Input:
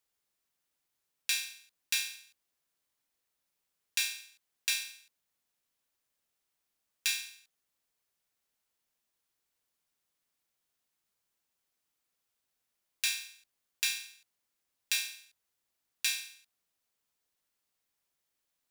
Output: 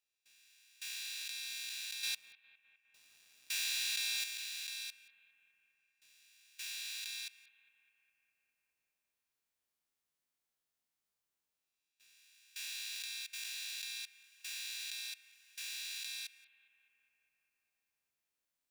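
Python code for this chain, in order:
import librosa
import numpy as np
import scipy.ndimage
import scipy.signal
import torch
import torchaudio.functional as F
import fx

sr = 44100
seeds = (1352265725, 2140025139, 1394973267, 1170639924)

y = fx.spec_swells(x, sr, rise_s=1.46)
y = fx.dynamic_eq(y, sr, hz=4000.0, q=3.3, threshold_db=-47.0, ratio=4.0, max_db=5)
y = fx.level_steps(y, sr, step_db=23)
y = fx.leveller(y, sr, passes=2, at=(2.03, 4.24))
y = fx.echo_bbd(y, sr, ms=204, stages=4096, feedback_pct=69, wet_db=-18.5)
y = y * 10.0 ** (2.5 / 20.0)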